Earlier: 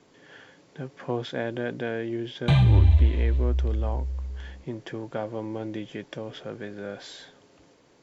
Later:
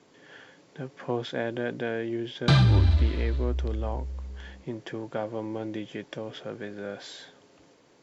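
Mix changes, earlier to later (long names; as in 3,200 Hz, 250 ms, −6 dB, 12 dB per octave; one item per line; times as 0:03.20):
background: remove phaser with its sweep stopped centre 1,400 Hz, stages 6
master: add low-shelf EQ 65 Hz −10 dB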